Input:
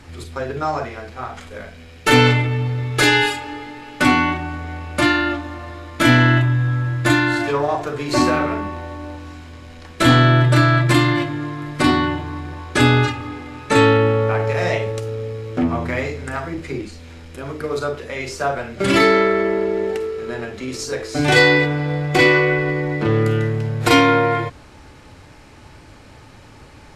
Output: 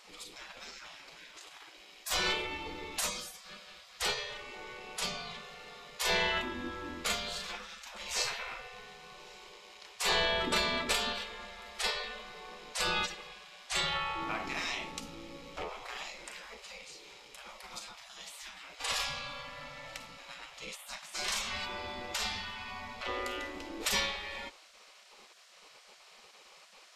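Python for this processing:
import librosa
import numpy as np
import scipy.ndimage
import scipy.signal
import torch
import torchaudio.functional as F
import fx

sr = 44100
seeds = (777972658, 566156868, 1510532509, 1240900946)

y = fx.graphic_eq_15(x, sr, hz=(100, 250, 630, 1600, 10000), db=(8, 5, -10, -12, -6))
y = fx.spec_gate(y, sr, threshold_db=-25, keep='weak')
y = y * librosa.db_to_amplitude(-2.0)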